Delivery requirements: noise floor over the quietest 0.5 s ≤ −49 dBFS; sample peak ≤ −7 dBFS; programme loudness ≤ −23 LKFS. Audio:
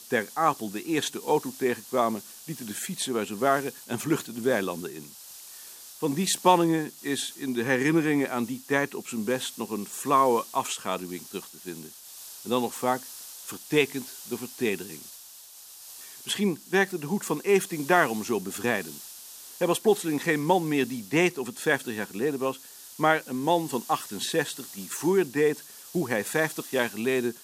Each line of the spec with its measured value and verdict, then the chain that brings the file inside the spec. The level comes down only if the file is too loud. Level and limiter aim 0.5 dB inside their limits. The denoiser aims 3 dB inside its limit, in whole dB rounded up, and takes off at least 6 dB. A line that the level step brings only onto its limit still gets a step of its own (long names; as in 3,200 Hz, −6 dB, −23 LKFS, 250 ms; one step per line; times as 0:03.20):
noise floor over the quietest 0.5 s −48 dBFS: out of spec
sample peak −6.0 dBFS: out of spec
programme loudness −27.0 LKFS: in spec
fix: broadband denoise 6 dB, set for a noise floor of −48 dBFS
brickwall limiter −7.5 dBFS